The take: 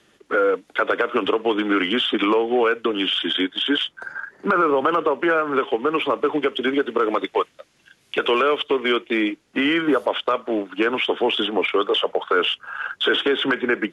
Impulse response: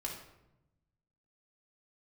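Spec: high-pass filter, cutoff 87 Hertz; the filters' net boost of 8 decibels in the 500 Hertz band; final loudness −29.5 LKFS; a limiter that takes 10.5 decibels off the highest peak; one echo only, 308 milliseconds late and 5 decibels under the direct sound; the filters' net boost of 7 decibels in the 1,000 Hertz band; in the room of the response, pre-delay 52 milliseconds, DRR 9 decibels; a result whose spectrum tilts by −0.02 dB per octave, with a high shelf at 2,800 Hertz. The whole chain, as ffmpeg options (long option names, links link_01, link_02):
-filter_complex "[0:a]highpass=87,equalizer=frequency=500:width_type=o:gain=8,equalizer=frequency=1000:width_type=o:gain=6,highshelf=frequency=2800:gain=8,alimiter=limit=-11dB:level=0:latency=1,aecho=1:1:308:0.562,asplit=2[link_01][link_02];[1:a]atrim=start_sample=2205,adelay=52[link_03];[link_02][link_03]afir=irnorm=-1:irlink=0,volume=-9.5dB[link_04];[link_01][link_04]amix=inputs=2:normalize=0,volume=-11dB"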